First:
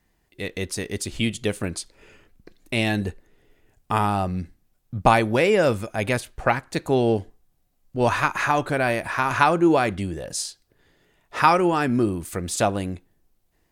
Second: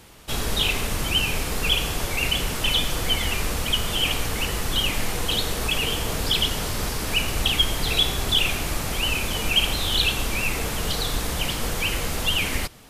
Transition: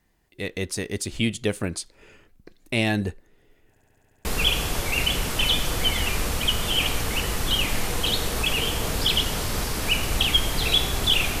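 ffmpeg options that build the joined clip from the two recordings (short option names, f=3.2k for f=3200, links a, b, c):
-filter_complex "[0:a]apad=whole_dur=11.4,atrim=end=11.4,asplit=8[a][b][c][d][e][f][g][h];[a]atrim=end=3.762[i];[b]atrim=start=3.688:end=3.762[j];[c]atrim=start=3.688:end=3.762[k];[d]atrim=start=3.688:end=3.762[l];[e]atrim=start=3.688:end=3.762[m];[f]atrim=start=3.688:end=3.762[n];[g]atrim=start=3.688:end=3.762[o];[h]atrim=start=3.688:end=3.762[p];[1:a]atrim=start=1.498:end=8.65[q];[i][j]acrossfade=d=0.004:c1=hsin:c2=hsin[r];[r][k]acrossfade=d=0.004:c1=hsin:c2=hsin[s];[s][l]acrossfade=d=0.004:c1=hsin:c2=hsin[t];[t][m]acrossfade=d=0.004:c1=hsin:c2=hsin[u];[u][n]acrossfade=d=0.004:c1=hsin:c2=hsin[v];[v][o]acrossfade=d=0.004:c1=hsin:c2=hsin[w];[w][p]acrossfade=d=0.004:c1=hsin:c2=hsin[x];[x][q]acrossfade=d=0.004:c1=hsin:c2=hsin"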